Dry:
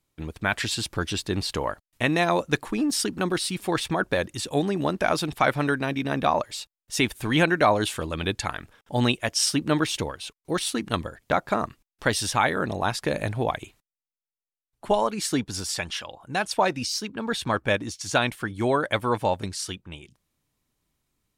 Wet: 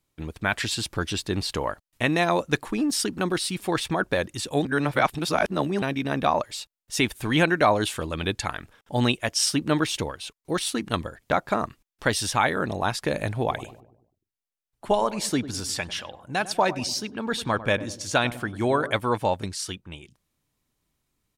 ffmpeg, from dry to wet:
-filter_complex "[0:a]asplit=3[s0][s1][s2];[s0]afade=t=out:st=13.46:d=0.02[s3];[s1]asplit=2[s4][s5];[s5]adelay=99,lowpass=f=930:p=1,volume=0.224,asplit=2[s6][s7];[s7]adelay=99,lowpass=f=930:p=1,volume=0.54,asplit=2[s8][s9];[s9]adelay=99,lowpass=f=930:p=1,volume=0.54,asplit=2[s10][s11];[s11]adelay=99,lowpass=f=930:p=1,volume=0.54,asplit=2[s12][s13];[s13]adelay=99,lowpass=f=930:p=1,volume=0.54,asplit=2[s14][s15];[s15]adelay=99,lowpass=f=930:p=1,volume=0.54[s16];[s4][s6][s8][s10][s12][s14][s16]amix=inputs=7:normalize=0,afade=t=in:st=13.46:d=0.02,afade=t=out:st=18.96:d=0.02[s17];[s2]afade=t=in:st=18.96:d=0.02[s18];[s3][s17][s18]amix=inputs=3:normalize=0,asplit=3[s19][s20][s21];[s19]atrim=end=4.652[s22];[s20]atrim=start=4.648:end=5.822,asetpts=PTS-STARTPTS,areverse[s23];[s21]atrim=start=5.818[s24];[s22][s23]acrossfade=d=0.004:c1=hsin:c2=hsin[s25];[s25][s24]acrossfade=d=0.004:c1=hsin:c2=hsin"

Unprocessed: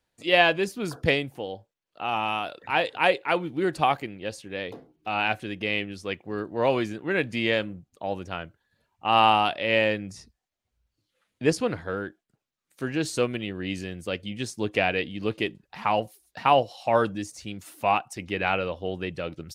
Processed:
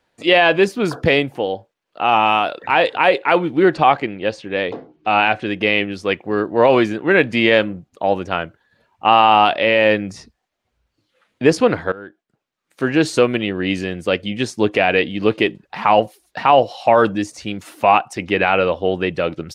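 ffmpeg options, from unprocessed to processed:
-filter_complex "[0:a]asettb=1/sr,asplit=3[s0][s1][s2];[s0]atrim=end=3.624[s3];[s1]atrim=start=3.62:end=5.46,asetpts=PTS-STARTPTS,afade=t=in:d=0.004:c=qsin,afade=t=out:st=1.836:d=0.004:c=qsin,lowpass=5600[s4];[s2]atrim=start=5.456[s5];[s3][s4]acrossfade=d=0.004:c1=hsin:c2=qsin[s6];[s6][s5]acrossfade=d=0.004:c1=qsin:c2=hsin,asplit=2[s7][s8];[s7]atrim=end=11.92,asetpts=PTS-STARTPTS,afade=t=out:st=11.916:d=0.004:c=hsin:silence=0.1[s9];[s8]atrim=start=11.92,asetpts=PTS-STARTPTS,afade=t=in:d=0.99:silence=0.1[s10];[s9][s10]concat=n=2:v=0:a=1,lowpass=f=2500:p=1,lowshelf=f=150:g=-11,alimiter=level_in=5.62:limit=0.891:release=50:level=0:latency=1,volume=0.891"

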